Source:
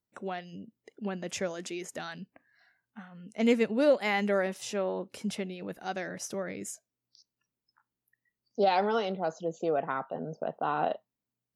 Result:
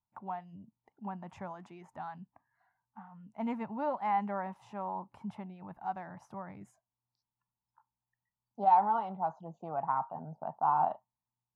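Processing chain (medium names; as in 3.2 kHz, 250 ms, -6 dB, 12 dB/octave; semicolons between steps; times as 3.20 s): FFT filter 130 Hz 0 dB, 490 Hz -20 dB, 900 Hz +9 dB, 1.5 kHz -11 dB, 5.4 kHz -29 dB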